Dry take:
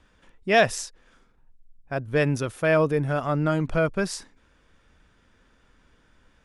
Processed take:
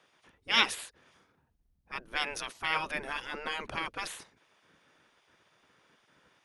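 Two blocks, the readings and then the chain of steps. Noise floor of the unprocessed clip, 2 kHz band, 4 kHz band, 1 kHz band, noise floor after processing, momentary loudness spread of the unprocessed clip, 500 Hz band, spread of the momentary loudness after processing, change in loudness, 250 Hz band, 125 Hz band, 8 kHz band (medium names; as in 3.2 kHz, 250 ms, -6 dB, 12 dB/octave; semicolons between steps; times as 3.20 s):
-62 dBFS, -4.5 dB, +4.0 dB, -6.5 dB, -72 dBFS, 13 LU, -21.0 dB, 17 LU, -8.0 dB, -19.5 dB, -27.5 dB, -7.0 dB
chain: band-stop 7.5 kHz, Q 6.2; dynamic bell 2.6 kHz, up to +7 dB, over -39 dBFS, Q 0.73; spectral gate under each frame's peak -15 dB weak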